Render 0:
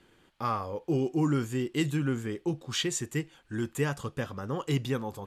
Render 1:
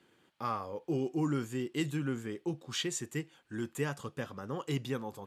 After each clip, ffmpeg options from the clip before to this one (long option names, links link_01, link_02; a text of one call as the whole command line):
ffmpeg -i in.wav -af "highpass=120,volume=-4.5dB" out.wav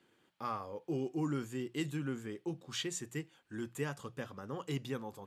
ffmpeg -i in.wav -af "bandreject=frequency=60:width_type=h:width=6,bandreject=frequency=120:width_type=h:width=6,bandreject=frequency=180:width_type=h:width=6,volume=-3.5dB" out.wav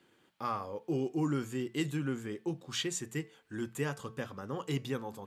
ffmpeg -i in.wav -af "bandreject=frequency=221.6:width_type=h:width=4,bandreject=frequency=443.2:width_type=h:width=4,bandreject=frequency=664.8:width_type=h:width=4,bandreject=frequency=886.4:width_type=h:width=4,bandreject=frequency=1108:width_type=h:width=4,bandreject=frequency=1329.6:width_type=h:width=4,bandreject=frequency=1551.2:width_type=h:width=4,bandreject=frequency=1772.8:width_type=h:width=4,bandreject=frequency=1994.4:width_type=h:width=4,bandreject=frequency=2216:width_type=h:width=4,bandreject=frequency=2437.6:width_type=h:width=4,volume=3.5dB" out.wav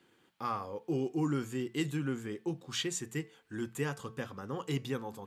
ffmpeg -i in.wav -af "bandreject=frequency=600:width=12" out.wav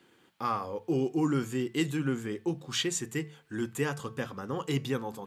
ffmpeg -i in.wav -af "bandreject=frequency=50:width_type=h:width=6,bandreject=frequency=100:width_type=h:width=6,bandreject=frequency=150:width_type=h:width=6,volume=4.5dB" out.wav